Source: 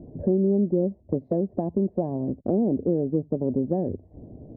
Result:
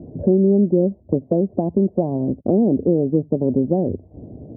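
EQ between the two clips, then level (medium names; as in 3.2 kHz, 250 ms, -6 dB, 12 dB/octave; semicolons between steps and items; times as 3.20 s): high-pass 57 Hz; low-pass 1 kHz 12 dB/octave; +6.5 dB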